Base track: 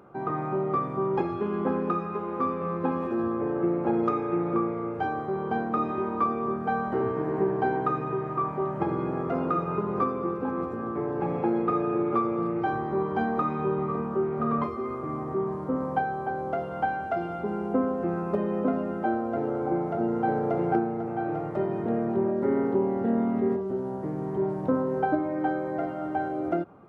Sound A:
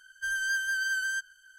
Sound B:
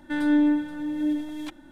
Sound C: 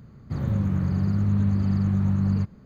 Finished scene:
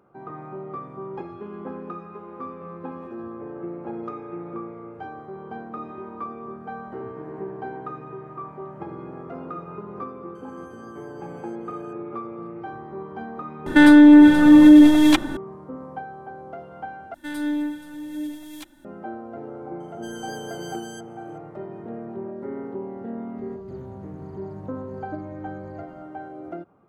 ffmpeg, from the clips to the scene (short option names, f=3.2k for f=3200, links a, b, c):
-filter_complex "[1:a]asplit=2[a][b];[2:a]asplit=2[c][d];[0:a]volume=-8dB[e];[a]acompressor=threshold=-52dB:ratio=6:attack=3.2:release=140:knee=1:detection=peak[f];[c]alimiter=level_in=22.5dB:limit=-1dB:release=50:level=0:latency=1[g];[d]aemphasis=mode=production:type=75kf[h];[b]aecho=1:1:1:0.99[i];[3:a]acompressor=threshold=-36dB:ratio=6:attack=3.2:release=140:knee=1:detection=peak[j];[e]asplit=2[k][l];[k]atrim=end=17.144[m];[h]atrim=end=1.71,asetpts=PTS-STARTPTS,volume=-5.5dB[n];[l]atrim=start=18.846[o];[f]atrim=end=1.58,asetpts=PTS-STARTPTS,volume=-3.5dB,afade=t=in:d=0.004:c=hsin,afade=t=out:st=1.576:d=0.004:c=hsin,adelay=10350[p];[g]atrim=end=1.71,asetpts=PTS-STARTPTS,volume=-2.5dB,afade=t=in:d=0.004:c=hsin,afade=t=out:st=1.706:d=0.004:c=hsin,adelay=13660[q];[i]atrim=end=1.58,asetpts=PTS-STARTPTS,volume=-8dB,afade=t=in:d=0.004:c=hsin,afade=t=out:st=1.576:d=0.004:c=hsin,adelay=19800[r];[j]atrim=end=2.65,asetpts=PTS-STARTPTS,volume=-4dB,afade=t=in:d=0.004:c=hsin,afade=t=out:st=2.646:d=0.004:c=hsin,adelay=23380[s];[m][n]acrossfade=d=0.004:c1=hsin:c2=hsin[t];[t][o]acrossfade=d=0.004:c1=hsin:c2=hsin[u];[u][p][q][r][s]amix=inputs=5:normalize=0"